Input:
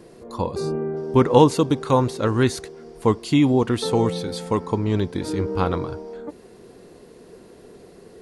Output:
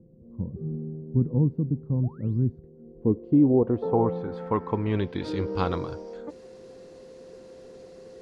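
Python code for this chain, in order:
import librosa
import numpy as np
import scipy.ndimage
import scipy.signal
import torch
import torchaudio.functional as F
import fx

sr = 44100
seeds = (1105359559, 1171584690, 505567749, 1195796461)

y = fx.spec_paint(x, sr, seeds[0], shape='rise', start_s=2.03, length_s=0.37, low_hz=560.0, high_hz=6600.0, level_db=-20.0)
y = y + 10.0 ** (-41.0 / 20.0) * np.sin(2.0 * np.pi * 520.0 * np.arange(len(y)) / sr)
y = fx.filter_sweep_lowpass(y, sr, from_hz=180.0, to_hz=6400.0, start_s=2.6, end_s=5.81, q=1.6)
y = y * librosa.db_to_amplitude(-4.5)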